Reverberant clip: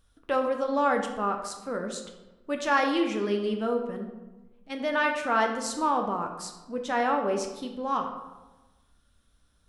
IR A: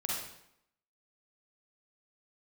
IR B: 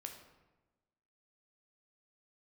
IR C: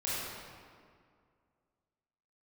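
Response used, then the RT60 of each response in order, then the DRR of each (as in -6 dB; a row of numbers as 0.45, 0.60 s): B; 0.75, 1.1, 2.1 s; -4.5, 3.5, -9.5 dB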